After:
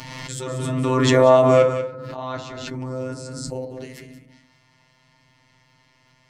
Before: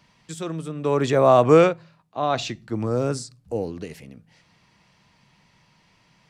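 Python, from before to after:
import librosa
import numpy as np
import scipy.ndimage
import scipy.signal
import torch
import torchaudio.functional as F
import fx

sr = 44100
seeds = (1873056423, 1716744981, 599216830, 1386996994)

y = fx.level_steps(x, sr, step_db=14, at=(1.62, 3.78))
y = fx.robotise(y, sr, hz=129.0)
y = y + 10.0 ** (-9.5 / 20.0) * np.pad(y, (int(189 * sr / 1000.0), 0))[:len(y)]
y = fx.rev_fdn(y, sr, rt60_s=0.39, lf_ratio=1.6, hf_ratio=0.4, size_ms=20.0, drr_db=2.5)
y = fx.pre_swell(y, sr, db_per_s=21.0)
y = y * librosa.db_to_amplitude(1.0)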